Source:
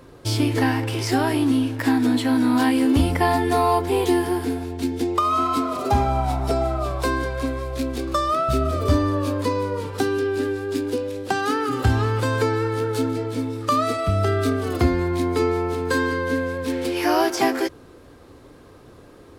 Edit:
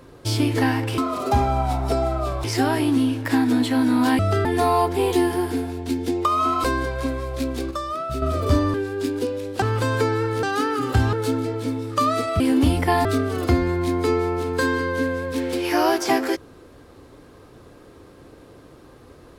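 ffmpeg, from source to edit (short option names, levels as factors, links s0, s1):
-filter_complex "[0:a]asplit=14[s0][s1][s2][s3][s4][s5][s6][s7][s8][s9][s10][s11][s12][s13];[s0]atrim=end=0.982[s14];[s1]atrim=start=5.568:end=7.032[s15];[s2]atrim=start=0.978:end=2.732[s16];[s3]atrim=start=14.108:end=14.372[s17];[s4]atrim=start=3.378:end=5.572[s18];[s5]atrim=start=7.028:end=8.102[s19];[s6]atrim=start=8.098:end=8.612,asetpts=PTS-STARTPTS,volume=0.473[s20];[s7]atrim=start=8.608:end=9.132[s21];[s8]atrim=start=10.448:end=11.332[s22];[s9]atrim=start=12.028:end=12.842[s23];[s10]atrim=start=11.328:end=12.032[s24];[s11]atrim=start=12.838:end=14.112[s25];[s12]atrim=start=2.728:end=3.382[s26];[s13]atrim=start=14.368[s27];[s14][s15]acrossfade=d=0.004:c1=hsin:c2=hsin[s28];[s28][s16]acrossfade=d=0.004:c1=hsin:c2=hsin[s29];[s29][s17]acrossfade=d=0.004:c1=hsin:c2=hsin[s30];[s30][s18]acrossfade=d=0.004:c1=hsin:c2=hsin[s31];[s31][s19]acrossfade=d=0.004:c1=hsin:c2=hsin[s32];[s32][s20]acrossfade=d=0.004:c1=hsin:c2=hsin[s33];[s33][s21]acrossfade=d=0.004:c1=hsin:c2=hsin[s34];[s34][s22]acrossfade=d=0.004:c1=hsin:c2=hsin[s35];[s35][s23]acrossfade=d=0.004:c1=hsin:c2=hsin[s36];[s36][s24]acrossfade=d=0.004:c1=hsin:c2=hsin[s37];[s37][s25]acrossfade=d=0.004:c1=hsin:c2=hsin[s38];[s38][s26]acrossfade=d=0.004:c1=hsin:c2=hsin[s39];[s39][s27]acrossfade=d=0.004:c1=hsin:c2=hsin"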